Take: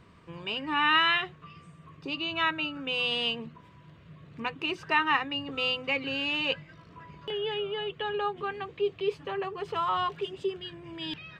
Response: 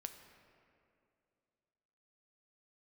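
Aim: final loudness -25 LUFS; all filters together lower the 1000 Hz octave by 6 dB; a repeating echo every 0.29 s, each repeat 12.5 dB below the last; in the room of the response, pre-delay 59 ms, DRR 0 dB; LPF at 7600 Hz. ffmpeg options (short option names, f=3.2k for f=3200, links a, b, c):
-filter_complex "[0:a]lowpass=7.6k,equalizer=f=1k:t=o:g=-7.5,aecho=1:1:290|580|870:0.237|0.0569|0.0137,asplit=2[a][b];[1:a]atrim=start_sample=2205,adelay=59[c];[b][c]afir=irnorm=-1:irlink=0,volume=4dB[d];[a][d]amix=inputs=2:normalize=0,volume=3dB"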